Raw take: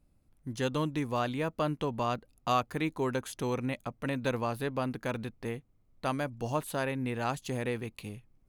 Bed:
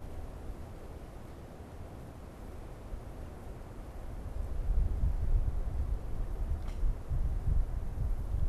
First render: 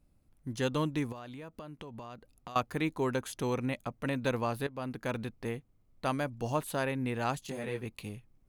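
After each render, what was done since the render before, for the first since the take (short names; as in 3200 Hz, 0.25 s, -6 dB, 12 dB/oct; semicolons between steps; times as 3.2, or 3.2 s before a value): 1.12–2.56 compressor 10:1, threshold -41 dBFS; 4.67–5.25 fade in equal-power, from -14.5 dB; 7.46–7.86 detuned doubles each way 18 cents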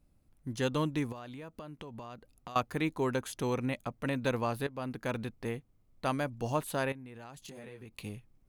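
6.92–7.95 compressor 16:1, threshold -43 dBFS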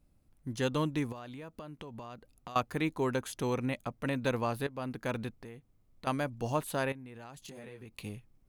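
5.32–6.07 compressor 3:1, threshold -46 dBFS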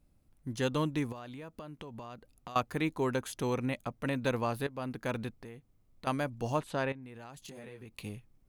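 6.6–7.03 air absorption 76 m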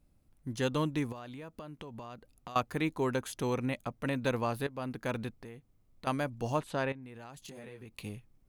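nothing audible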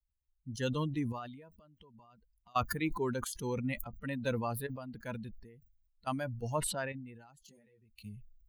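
per-bin expansion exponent 2; sustainer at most 51 dB/s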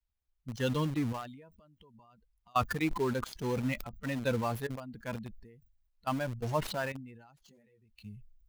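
median filter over 5 samples; in parallel at -8.5 dB: requantised 6-bit, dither none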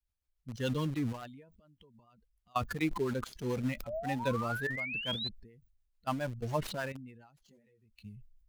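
3.87–5.29 painted sound rise 560–4200 Hz -35 dBFS; rotary speaker horn 7 Hz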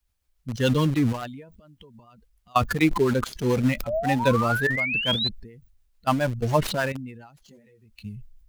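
gain +11.5 dB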